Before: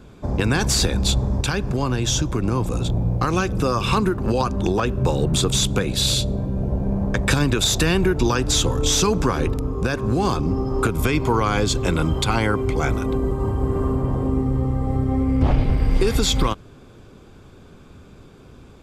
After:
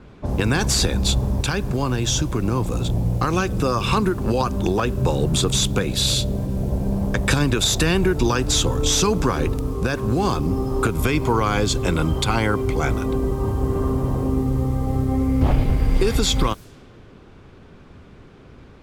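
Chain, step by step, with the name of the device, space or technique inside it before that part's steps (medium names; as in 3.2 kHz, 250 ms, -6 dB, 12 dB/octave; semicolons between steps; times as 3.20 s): cassette deck with a dynamic noise filter (white noise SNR 30 dB; level-controlled noise filter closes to 2.1 kHz, open at -19.5 dBFS)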